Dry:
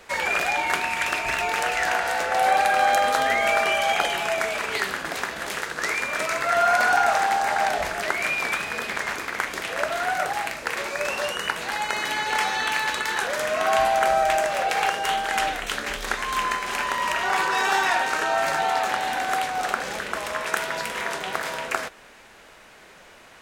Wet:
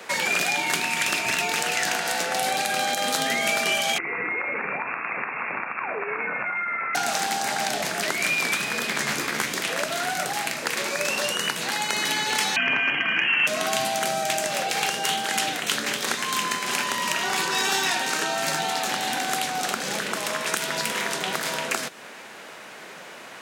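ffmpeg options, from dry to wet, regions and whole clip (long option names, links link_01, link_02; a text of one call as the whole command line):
ffmpeg -i in.wav -filter_complex "[0:a]asettb=1/sr,asplit=3[link_01][link_02][link_03];[link_01]atrim=end=3.984[link_04];[link_02]atrim=start=3.98:end=6.95,asetpts=PTS-STARTPTS,afade=type=in:duration=0.004:curve=qsin,afade=type=out:start_time=2.966:duration=0.004:curve=qsin,acompressor=threshold=-24dB:ratio=10:attack=3.2:release=140:knee=1:detection=peak,lowpass=frequency=2400:width_type=q:width=0.5098,lowpass=frequency=2400:width_type=q:width=0.6013,lowpass=frequency=2400:width_type=q:width=0.9,lowpass=frequency=2400:width_type=q:width=2.563,afreqshift=-2800[link_05];[link_03]atrim=start=6.946[link_06];[link_04][link_05]acrossfade=duration=0.004:curve1=hsin:curve2=qsin[link_07];[link_07][link_06]acrossfade=duration=0.004:curve1=qsin:curve2=hsin,asettb=1/sr,asplit=3[link_08][link_09][link_10];[link_08]atrim=end=8.974[link_11];[link_09]atrim=start=8.97:end=9.53,asetpts=PTS-STARTPTS,afade=type=in:duration=0.004:curve=qsin,afade=type=out:start_time=0.556:duration=0.004:curve=qsin,lowshelf=frequency=130:gain=10.5,asplit=2[link_12][link_13];[link_13]adelay=14,volume=-4dB[link_14];[link_12][link_14]amix=inputs=2:normalize=0,atrim=end_sample=24696[link_15];[link_10]atrim=start=9.526[link_16];[link_11][link_15]acrossfade=duration=0.004:curve1=hsin:curve2=qsin[link_17];[link_17][link_16]acrossfade=duration=0.004:curve1=qsin:curve2=hsin,asettb=1/sr,asplit=3[link_18][link_19][link_20];[link_18]atrim=end=12.564[link_21];[link_19]atrim=start=12.56:end=13.47,asetpts=PTS-STARTPTS,afade=type=in:duration=0.004:curve=qsin,afade=type=out:start_time=0.906:duration=0.004:curve=qsin,lowpass=frequency=2800:width_type=q:width=0.5098,lowpass=frequency=2800:width_type=q:width=0.6013,lowpass=frequency=2800:width_type=q:width=0.9,lowpass=frequency=2800:width_type=q:width=2.563,afreqshift=-3300,acontrast=23[link_22];[link_20]atrim=start=13.466[link_23];[link_21][link_22]acrossfade=duration=0.004:curve1=hsin:curve2=qsin[link_24];[link_24][link_23]acrossfade=duration=0.004:curve1=qsin:curve2=hsin,highpass=frequency=140:width=0.5412,highpass=frequency=140:width=1.3066,acrossover=split=300|3000[link_25][link_26][link_27];[link_26]acompressor=threshold=-36dB:ratio=5[link_28];[link_25][link_28][link_27]amix=inputs=3:normalize=0,alimiter=level_in=14dB:limit=-1dB:release=50:level=0:latency=1,volume=-6.5dB" out.wav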